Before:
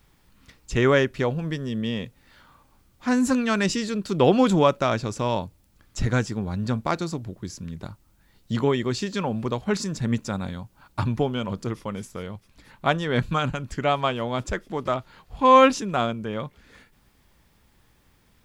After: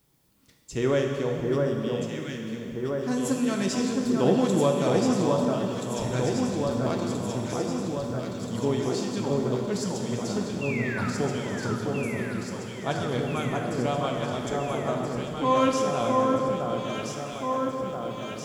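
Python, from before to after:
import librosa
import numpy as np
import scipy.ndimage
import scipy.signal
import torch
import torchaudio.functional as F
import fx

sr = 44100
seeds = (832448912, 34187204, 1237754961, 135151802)

y = fx.highpass(x, sr, hz=300.0, slope=6)
y = fx.peak_eq(y, sr, hz=1700.0, db=-12.5, octaves=2.8)
y = fx.spec_paint(y, sr, seeds[0], shape='fall', start_s=10.61, length_s=0.49, low_hz=1200.0, high_hz=2800.0, level_db=-36.0)
y = fx.echo_alternate(y, sr, ms=664, hz=1600.0, feedback_pct=81, wet_db=-2.0)
y = fx.rev_plate(y, sr, seeds[1], rt60_s=2.5, hf_ratio=0.95, predelay_ms=0, drr_db=1.5)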